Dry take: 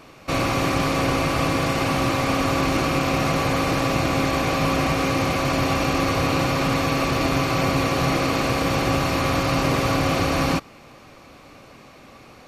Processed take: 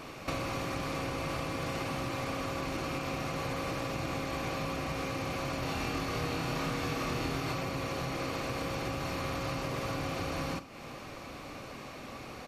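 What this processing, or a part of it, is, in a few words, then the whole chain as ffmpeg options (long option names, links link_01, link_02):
serial compression, leveller first: -filter_complex "[0:a]acompressor=threshold=-23dB:ratio=2.5,acompressor=threshold=-36dB:ratio=4,asettb=1/sr,asplit=3[link_01][link_02][link_03];[link_01]atrim=end=5.604[link_04];[link_02]atrim=start=5.6:end=7.53,asetpts=PTS-STARTPTS,afade=type=in:duration=0.004:curve=qsin,afade=type=out:start_time=1.926:duration=0.004:curve=qsin,asplit=2[link_05][link_06];[link_06]adelay=25,volume=-2dB[link_07];[link_05][link_07]amix=inputs=2:normalize=0,atrim=end_sample=85113[link_08];[link_03]atrim=start=7.526[link_09];[link_04][link_08]acrossfade=duration=0.004:curve1=hsin:curve2=qsin[link_10];[link_10][link_09]acrossfade=duration=0.004:curve1=qsin:curve2=hsin,aecho=1:1:46|79:0.188|0.141,volume=1.5dB"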